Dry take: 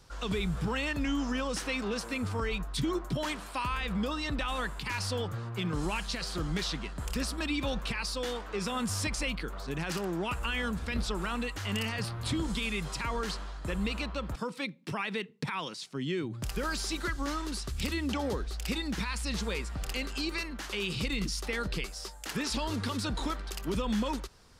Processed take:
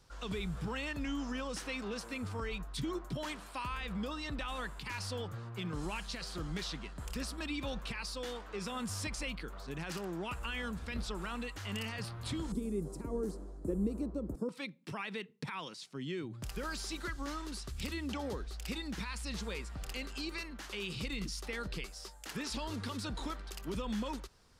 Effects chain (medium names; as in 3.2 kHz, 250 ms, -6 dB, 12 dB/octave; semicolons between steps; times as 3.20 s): 12.52–14.49 s: FFT filter 120 Hz 0 dB, 350 Hz +13 dB, 880 Hz -8 dB, 3 kHz -26 dB, 8.9 kHz -1 dB; trim -6.5 dB